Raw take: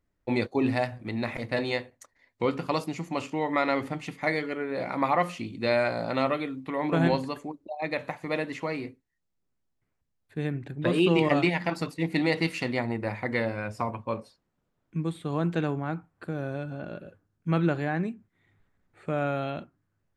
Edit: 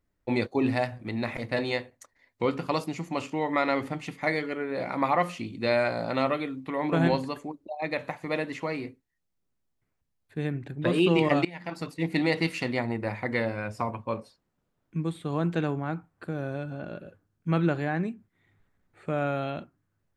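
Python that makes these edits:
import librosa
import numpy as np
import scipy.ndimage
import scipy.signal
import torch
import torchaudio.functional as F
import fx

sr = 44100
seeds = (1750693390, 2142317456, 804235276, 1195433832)

y = fx.edit(x, sr, fx.fade_in_from(start_s=11.45, length_s=0.61, floor_db=-21.5), tone=tone)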